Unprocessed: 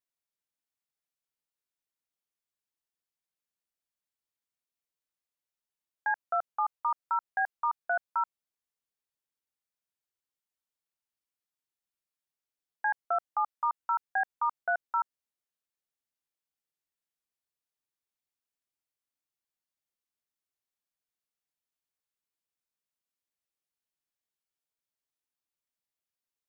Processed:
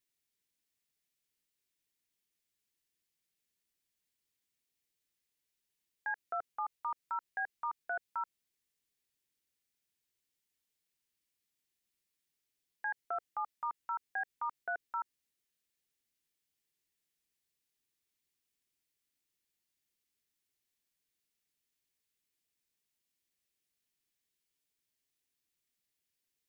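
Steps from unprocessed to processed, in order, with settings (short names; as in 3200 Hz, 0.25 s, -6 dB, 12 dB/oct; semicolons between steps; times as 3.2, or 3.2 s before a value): band shelf 890 Hz -8.5 dB; limiter -35.5 dBFS, peak gain reduction 9 dB; gain +6.5 dB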